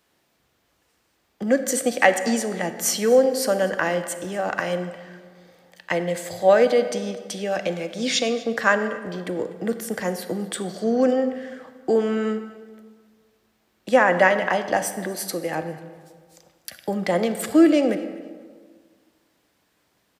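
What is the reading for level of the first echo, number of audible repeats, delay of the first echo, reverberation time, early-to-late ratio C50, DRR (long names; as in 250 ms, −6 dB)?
−21.5 dB, 2, 246 ms, 1.7 s, 10.5 dB, 9.5 dB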